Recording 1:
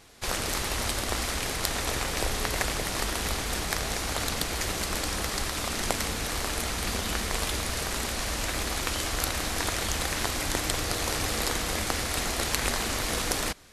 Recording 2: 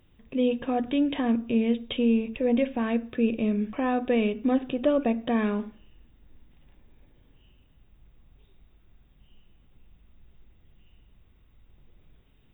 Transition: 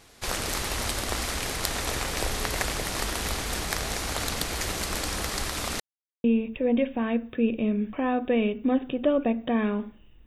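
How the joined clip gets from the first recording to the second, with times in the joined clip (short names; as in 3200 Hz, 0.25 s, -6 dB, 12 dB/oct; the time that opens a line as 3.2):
recording 1
5.8–6.24 mute
6.24 switch to recording 2 from 2.04 s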